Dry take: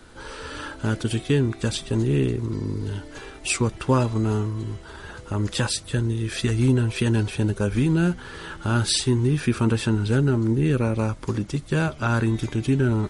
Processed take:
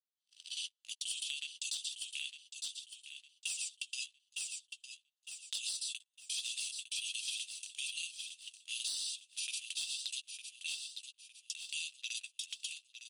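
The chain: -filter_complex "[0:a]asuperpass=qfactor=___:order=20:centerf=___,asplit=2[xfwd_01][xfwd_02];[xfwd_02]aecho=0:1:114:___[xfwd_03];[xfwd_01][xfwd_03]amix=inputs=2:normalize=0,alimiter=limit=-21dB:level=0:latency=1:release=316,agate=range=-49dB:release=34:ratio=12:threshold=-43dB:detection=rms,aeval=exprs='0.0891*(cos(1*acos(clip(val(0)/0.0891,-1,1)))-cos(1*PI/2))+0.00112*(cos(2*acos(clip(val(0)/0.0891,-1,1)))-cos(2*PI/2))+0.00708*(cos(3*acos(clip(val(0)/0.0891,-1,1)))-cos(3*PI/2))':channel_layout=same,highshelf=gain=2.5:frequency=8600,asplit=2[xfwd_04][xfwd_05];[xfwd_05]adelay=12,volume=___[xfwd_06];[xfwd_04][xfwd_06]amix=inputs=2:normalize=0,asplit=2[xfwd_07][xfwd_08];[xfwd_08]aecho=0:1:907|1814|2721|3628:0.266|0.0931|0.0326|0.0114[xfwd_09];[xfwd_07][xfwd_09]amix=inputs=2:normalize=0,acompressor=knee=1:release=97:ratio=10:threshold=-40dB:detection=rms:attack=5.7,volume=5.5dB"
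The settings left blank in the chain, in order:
0.7, 5900, 0.422, -13dB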